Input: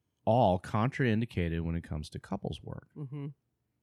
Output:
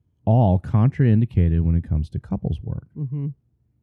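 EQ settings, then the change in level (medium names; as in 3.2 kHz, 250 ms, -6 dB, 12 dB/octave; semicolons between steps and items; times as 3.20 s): tilt EQ -2.5 dB/octave; bass shelf 220 Hz +10 dB; 0.0 dB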